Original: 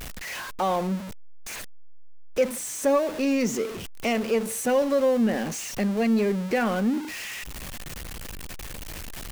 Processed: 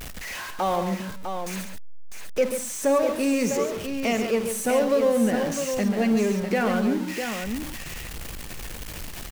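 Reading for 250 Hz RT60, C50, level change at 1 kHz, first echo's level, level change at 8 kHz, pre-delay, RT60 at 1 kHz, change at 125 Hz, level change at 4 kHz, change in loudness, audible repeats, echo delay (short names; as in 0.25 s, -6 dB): none, none, +1.5 dB, -15.5 dB, +1.5 dB, none, none, +1.0 dB, +1.5 dB, +0.5 dB, 3, 51 ms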